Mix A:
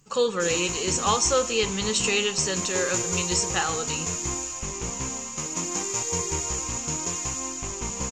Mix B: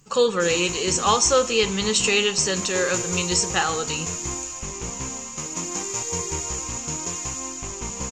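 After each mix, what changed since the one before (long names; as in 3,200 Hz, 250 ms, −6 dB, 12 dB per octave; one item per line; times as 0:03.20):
speech +4.0 dB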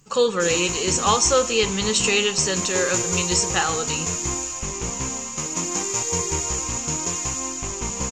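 background +3.5 dB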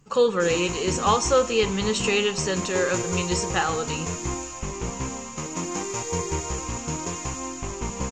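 master: add high-shelf EQ 3,500 Hz −11 dB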